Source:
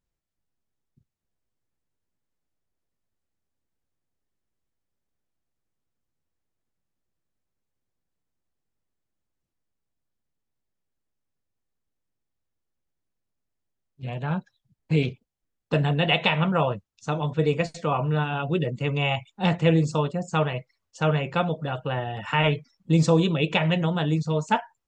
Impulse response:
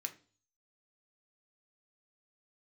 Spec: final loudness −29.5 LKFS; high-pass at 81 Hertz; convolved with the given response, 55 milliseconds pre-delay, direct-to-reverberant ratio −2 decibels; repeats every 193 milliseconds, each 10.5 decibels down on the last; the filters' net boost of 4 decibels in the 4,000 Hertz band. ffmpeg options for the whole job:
-filter_complex "[0:a]highpass=81,equalizer=frequency=4000:width_type=o:gain=6,aecho=1:1:193|386|579:0.299|0.0896|0.0269,asplit=2[link_01][link_02];[1:a]atrim=start_sample=2205,adelay=55[link_03];[link_02][link_03]afir=irnorm=-1:irlink=0,volume=3.5dB[link_04];[link_01][link_04]amix=inputs=2:normalize=0,volume=-8.5dB"

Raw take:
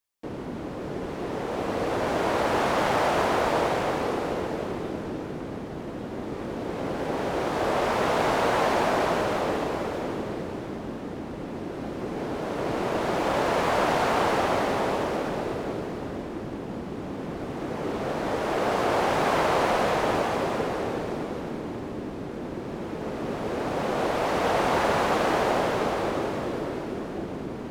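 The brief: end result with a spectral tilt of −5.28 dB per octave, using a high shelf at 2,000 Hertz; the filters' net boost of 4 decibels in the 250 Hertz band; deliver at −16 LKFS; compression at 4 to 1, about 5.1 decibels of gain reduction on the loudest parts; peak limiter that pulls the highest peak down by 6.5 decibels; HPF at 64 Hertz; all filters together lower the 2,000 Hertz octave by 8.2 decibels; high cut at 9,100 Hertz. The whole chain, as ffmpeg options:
ffmpeg -i in.wav -af "highpass=64,lowpass=9100,equalizer=frequency=250:width_type=o:gain=5.5,highshelf=frequency=2000:gain=-8,equalizer=frequency=2000:width_type=o:gain=-6.5,acompressor=threshold=-26dB:ratio=4,volume=16.5dB,alimiter=limit=-6.5dB:level=0:latency=1" out.wav

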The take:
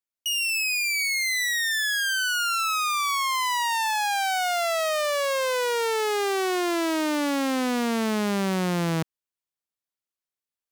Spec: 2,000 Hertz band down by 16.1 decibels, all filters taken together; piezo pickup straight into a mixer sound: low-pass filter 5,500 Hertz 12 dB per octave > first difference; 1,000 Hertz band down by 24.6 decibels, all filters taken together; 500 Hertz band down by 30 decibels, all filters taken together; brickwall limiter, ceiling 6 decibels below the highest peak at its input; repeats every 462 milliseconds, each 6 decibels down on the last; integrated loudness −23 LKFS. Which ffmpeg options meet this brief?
ffmpeg -i in.wav -af "equalizer=frequency=500:width_type=o:gain=-7,equalizer=frequency=1000:width_type=o:gain=-7,equalizer=frequency=2000:width_type=o:gain=-4.5,alimiter=level_in=1dB:limit=-24dB:level=0:latency=1,volume=-1dB,lowpass=5500,aderivative,aecho=1:1:462|924|1386|1848|2310|2772:0.501|0.251|0.125|0.0626|0.0313|0.0157,volume=18dB" out.wav

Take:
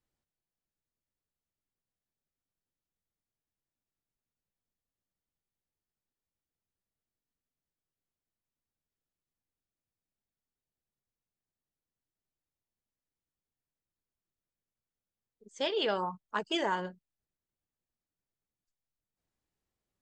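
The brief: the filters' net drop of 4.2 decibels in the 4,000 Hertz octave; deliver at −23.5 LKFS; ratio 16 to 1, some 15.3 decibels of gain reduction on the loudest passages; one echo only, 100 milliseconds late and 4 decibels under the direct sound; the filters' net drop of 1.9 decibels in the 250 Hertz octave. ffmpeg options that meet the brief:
ffmpeg -i in.wav -af "equalizer=frequency=250:width_type=o:gain=-3,equalizer=frequency=4000:width_type=o:gain=-6,acompressor=threshold=-43dB:ratio=16,aecho=1:1:100:0.631,volume=24dB" out.wav

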